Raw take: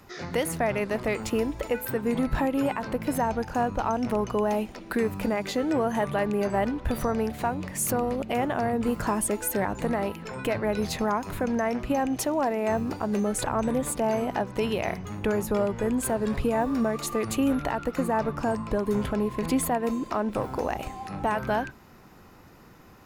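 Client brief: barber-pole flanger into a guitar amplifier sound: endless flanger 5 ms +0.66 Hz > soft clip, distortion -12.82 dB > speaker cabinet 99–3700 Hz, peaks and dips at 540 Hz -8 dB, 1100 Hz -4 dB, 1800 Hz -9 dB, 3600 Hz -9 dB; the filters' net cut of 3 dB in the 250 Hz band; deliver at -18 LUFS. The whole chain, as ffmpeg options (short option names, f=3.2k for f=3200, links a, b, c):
-filter_complex "[0:a]equalizer=f=250:t=o:g=-3,asplit=2[a][b];[b]adelay=5,afreqshift=0.66[c];[a][c]amix=inputs=2:normalize=1,asoftclip=threshold=-27.5dB,highpass=99,equalizer=f=540:t=q:w=4:g=-8,equalizer=f=1.1k:t=q:w=4:g=-4,equalizer=f=1.8k:t=q:w=4:g=-9,equalizer=f=3.6k:t=q:w=4:g=-9,lowpass=f=3.7k:w=0.5412,lowpass=f=3.7k:w=1.3066,volume=19dB"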